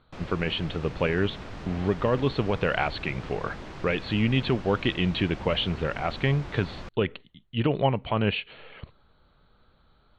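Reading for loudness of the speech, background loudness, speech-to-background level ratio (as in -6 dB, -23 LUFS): -27.5 LUFS, -41.0 LUFS, 13.5 dB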